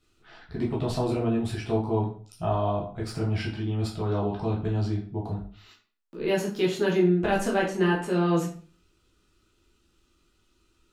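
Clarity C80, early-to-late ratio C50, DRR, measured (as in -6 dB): 11.5 dB, 7.0 dB, -4.5 dB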